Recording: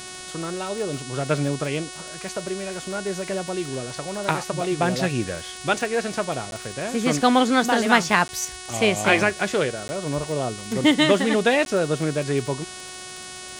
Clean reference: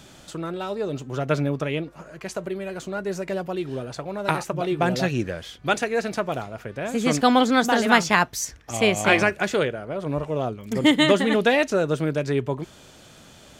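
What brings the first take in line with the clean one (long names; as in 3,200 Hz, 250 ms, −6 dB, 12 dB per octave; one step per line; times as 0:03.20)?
click removal
hum removal 368.7 Hz, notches 28
repair the gap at 0:06.51/0:08.28/0:09.88/0:11.65, 11 ms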